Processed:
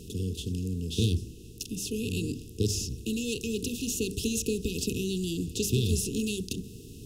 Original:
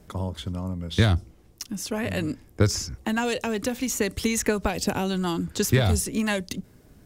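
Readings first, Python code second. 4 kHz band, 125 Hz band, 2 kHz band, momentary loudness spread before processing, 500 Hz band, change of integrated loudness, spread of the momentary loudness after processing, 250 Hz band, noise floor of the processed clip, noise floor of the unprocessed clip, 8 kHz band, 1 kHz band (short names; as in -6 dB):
-2.5 dB, -4.5 dB, -12.0 dB, 10 LU, -6.0 dB, -5.0 dB, 7 LU, -4.0 dB, -46 dBFS, -54 dBFS, -2.5 dB, under -40 dB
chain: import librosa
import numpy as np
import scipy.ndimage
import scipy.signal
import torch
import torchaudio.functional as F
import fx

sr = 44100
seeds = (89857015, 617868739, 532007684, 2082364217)

y = fx.bin_compress(x, sr, power=0.6)
y = fx.brickwall_bandstop(y, sr, low_hz=480.0, high_hz=2500.0)
y = fx.hum_notches(y, sr, base_hz=50, count=9)
y = F.gain(torch.from_numpy(y), -6.5).numpy()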